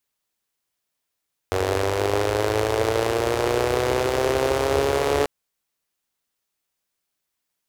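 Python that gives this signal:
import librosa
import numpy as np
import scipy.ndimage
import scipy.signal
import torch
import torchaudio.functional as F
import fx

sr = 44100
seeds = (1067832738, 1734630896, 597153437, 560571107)

y = fx.engine_four_rev(sr, seeds[0], length_s=3.74, rpm=2800, resonances_hz=(81.0, 430.0), end_rpm=4300)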